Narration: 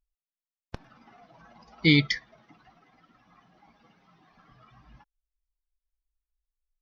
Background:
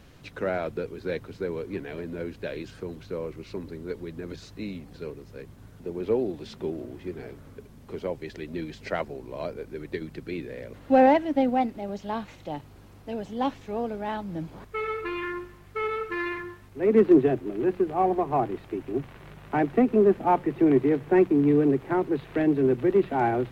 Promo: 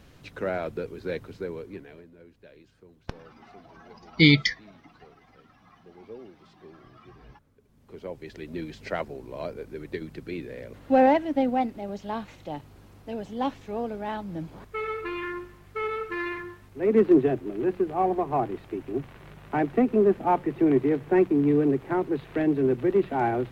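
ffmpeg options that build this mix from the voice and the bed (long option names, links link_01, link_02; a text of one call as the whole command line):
ffmpeg -i stem1.wav -i stem2.wav -filter_complex "[0:a]adelay=2350,volume=3dB[link_01];[1:a]volume=16dB,afade=type=out:start_time=1.26:duration=0.85:silence=0.141254,afade=type=in:start_time=7.6:duration=0.97:silence=0.141254[link_02];[link_01][link_02]amix=inputs=2:normalize=0" out.wav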